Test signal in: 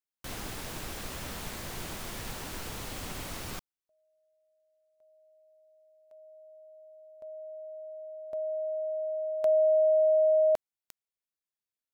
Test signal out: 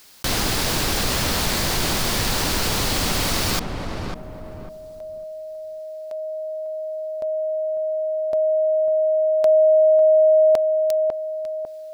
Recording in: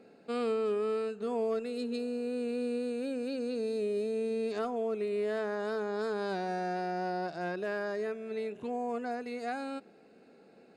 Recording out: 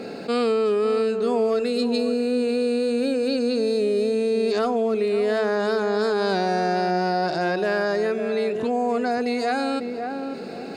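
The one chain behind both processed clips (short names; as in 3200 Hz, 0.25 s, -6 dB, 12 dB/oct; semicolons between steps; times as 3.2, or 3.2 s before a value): bell 4600 Hz +6 dB 0.71 oct; on a send: darkening echo 0.549 s, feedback 18%, low-pass 1000 Hz, level -9.5 dB; on the sum: fast leveller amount 50%; gain +8.5 dB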